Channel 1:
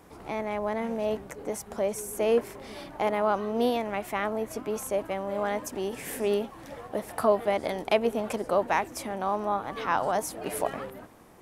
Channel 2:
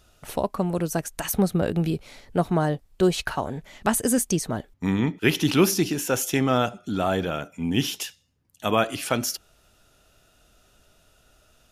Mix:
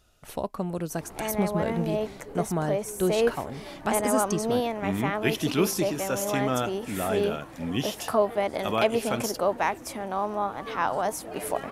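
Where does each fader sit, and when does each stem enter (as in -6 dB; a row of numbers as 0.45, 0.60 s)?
0.0, -5.5 dB; 0.90, 0.00 s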